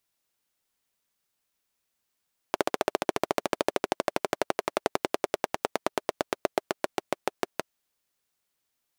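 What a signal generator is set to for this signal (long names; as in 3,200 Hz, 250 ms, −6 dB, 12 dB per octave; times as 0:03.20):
pulse-train model of a single-cylinder engine, changing speed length 5.13 s, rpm 1,800, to 700, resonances 410/600 Hz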